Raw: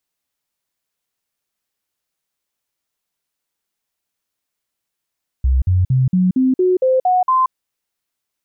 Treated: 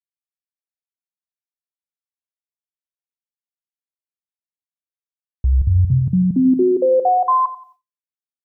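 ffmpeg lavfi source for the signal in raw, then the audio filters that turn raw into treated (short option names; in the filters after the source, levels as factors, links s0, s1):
-f lavfi -i "aevalsrc='0.282*clip(min(mod(t,0.23),0.18-mod(t,0.23))/0.005,0,1)*sin(2*PI*64.8*pow(2,floor(t/0.23)/2)*mod(t,0.23))':d=2.07:s=44100"
-filter_complex "[0:a]asplit=2[s0][s1];[s1]adelay=89,lowpass=f=800:p=1,volume=0.355,asplit=2[s2][s3];[s3]adelay=89,lowpass=f=800:p=1,volume=0.53,asplit=2[s4][s5];[s5]adelay=89,lowpass=f=800:p=1,volume=0.53,asplit=2[s6][s7];[s7]adelay=89,lowpass=f=800:p=1,volume=0.53,asplit=2[s8][s9];[s9]adelay=89,lowpass=f=800:p=1,volume=0.53,asplit=2[s10][s11];[s11]adelay=89,lowpass=f=800:p=1,volume=0.53[s12];[s0][s2][s4][s6][s8][s10][s12]amix=inputs=7:normalize=0,agate=range=0.0224:threshold=0.00794:ratio=3:detection=peak"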